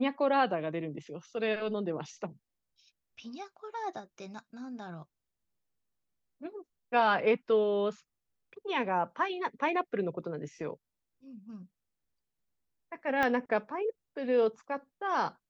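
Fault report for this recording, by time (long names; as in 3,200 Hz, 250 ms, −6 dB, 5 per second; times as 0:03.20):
0:13.23: click −17 dBFS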